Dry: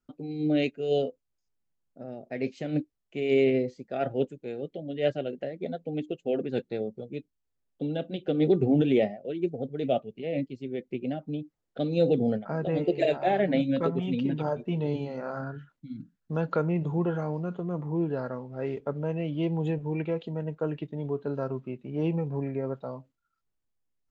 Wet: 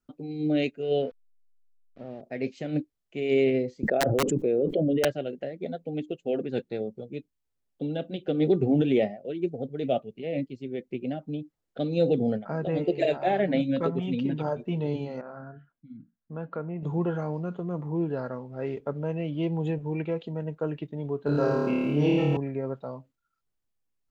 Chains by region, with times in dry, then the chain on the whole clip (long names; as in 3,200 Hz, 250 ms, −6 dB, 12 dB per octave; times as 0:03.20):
0:00.82–0:02.21: hold until the input has moved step −51 dBFS + low-pass filter 3,900 Hz 24 dB per octave
0:03.83–0:05.05: spectral envelope exaggerated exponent 1.5 + wrap-around overflow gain 19.5 dB + envelope flattener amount 100%
0:15.21–0:16.83: low-pass filter 2,100 Hz + tuned comb filter 230 Hz, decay 0.22 s, harmonics odd
0:21.26–0:22.37: high-shelf EQ 2,600 Hz +9.5 dB + flutter between parallel walls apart 4.7 metres, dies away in 1.3 s + envelope flattener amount 50%
whole clip: no processing